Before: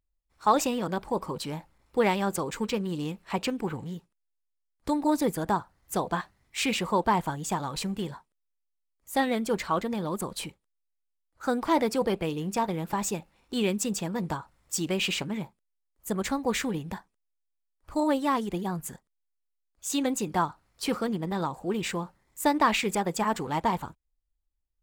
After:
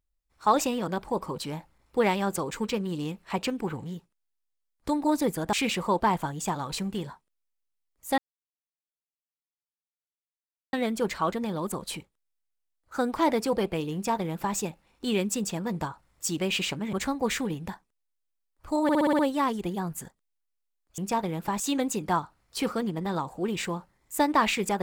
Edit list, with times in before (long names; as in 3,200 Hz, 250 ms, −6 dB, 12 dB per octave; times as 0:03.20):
0:05.53–0:06.57: remove
0:09.22: splice in silence 2.55 s
0:12.43–0:13.05: duplicate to 0:19.86
0:15.42–0:16.17: remove
0:18.07: stutter 0.06 s, 7 plays